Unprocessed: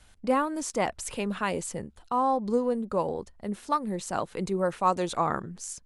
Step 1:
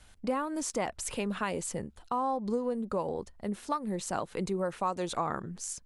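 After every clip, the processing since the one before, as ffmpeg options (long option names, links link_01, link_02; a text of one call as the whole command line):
ffmpeg -i in.wav -af "acompressor=threshold=-29dB:ratio=3" out.wav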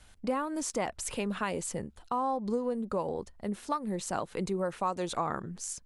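ffmpeg -i in.wav -af anull out.wav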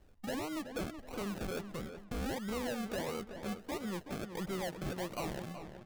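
ffmpeg -i in.wav -filter_complex "[0:a]aresample=8000,asoftclip=type=hard:threshold=-30.5dB,aresample=44100,acrusher=samples=36:mix=1:aa=0.000001:lfo=1:lforange=21.6:lforate=1.5,asplit=2[link_01][link_02];[link_02]adelay=375,lowpass=frequency=3100:poles=1,volume=-9dB,asplit=2[link_03][link_04];[link_04]adelay=375,lowpass=frequency=3100:poles=1,volume=0.38,asplit=2[link_05][link_06];[link_06]adelay=375,lowpass=frequency=3100:poles=1,volume=0.38,asplit=2[link_07][link_08];[link_08]adelay=375,lowpass=frequency=3100:poles=1,volume=0.38[link_09];[link_01][link_03][link_05][link_07][link_09]amix=inputs=5:normalize=0,volume=-4dB" out.wav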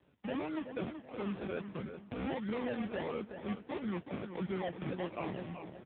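ffmpeg -i in.wav -filter_complex "[0:a]acrossover=split=200|920[link_01][link_02][link_03];[link_01]acrusher=samples=21:mix=1:aa=0.000001[link_04];[link_03]asplit=2[link_05][link_06];[link_06]adelay=21,volume=-8.5dB[link_07];[link_05][link_07]amix=inputs=2:normalize=0[link_08];[link_04][link_02][link_08]amix=inputs=3:normalize=0,volume=2.5dB" -ar 8000 -c:a libopencore_amrnb -b:a 5900 out.amr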